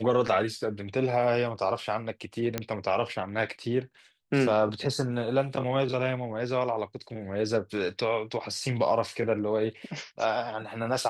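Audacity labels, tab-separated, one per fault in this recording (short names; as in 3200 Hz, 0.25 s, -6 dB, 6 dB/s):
2.580000	2.580000	pop -12 dBFS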